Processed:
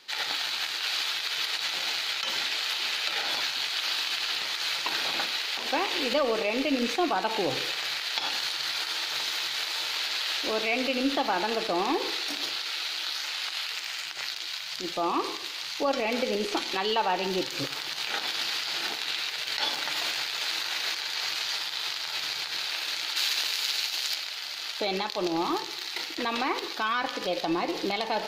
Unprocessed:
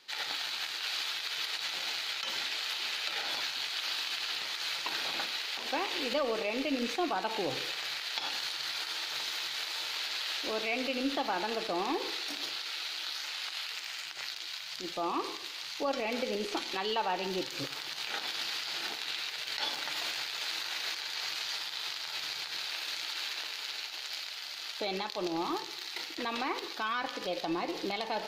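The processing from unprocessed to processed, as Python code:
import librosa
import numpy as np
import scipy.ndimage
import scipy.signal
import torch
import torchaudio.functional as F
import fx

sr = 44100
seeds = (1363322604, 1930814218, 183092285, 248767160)

y = fx.high_shelf(x, sr, hz=3700.0, db=9.0, at=(23.16, 24.14))
y = y * 10.0 ** (5.5 / 20.0)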